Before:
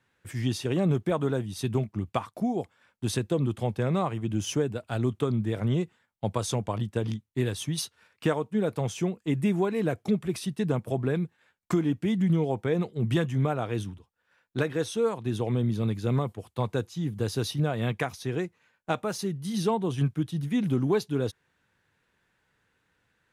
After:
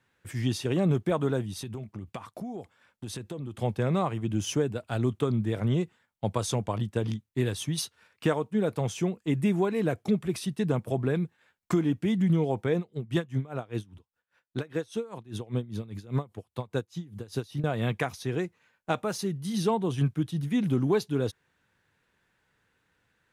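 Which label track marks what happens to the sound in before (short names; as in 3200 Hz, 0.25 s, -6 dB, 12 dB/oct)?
1.540000	3.570000	compressor 5:1, threshold -34 dBFS
12.770000	17.640000	dB-linear tremolo 5 Hz, depth 22 dB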